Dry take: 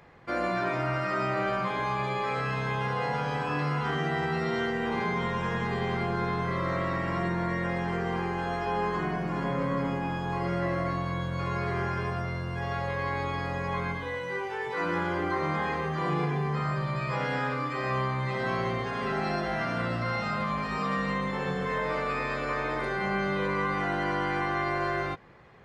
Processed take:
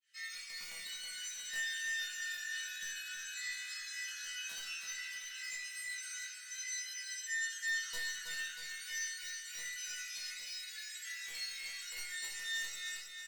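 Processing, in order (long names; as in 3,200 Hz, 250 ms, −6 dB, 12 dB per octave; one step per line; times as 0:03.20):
fade in at the beginning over 0.59 s
Butterworth high-pass 420 Hz 48 dB per octave
reverb reduction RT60 0.88 s
high-shelf EQ 3,900 Hz −3 dB
in parallel at −1 dB: brickwall limiter −30.5 dBFS, peak gain reduction 10.5 dB
on the sum: time stretch by phase vocoder 1.9×
wrap-around overflow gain 22.5 dB
change of speed 3.67×
resonators tuned to a chord E3 minor, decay 0.34 s
repeating echo 320 ms, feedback 58%, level −7 dB
rectangular room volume 280 cubic metres, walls furnished, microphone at 1.6 metres
level +4 dB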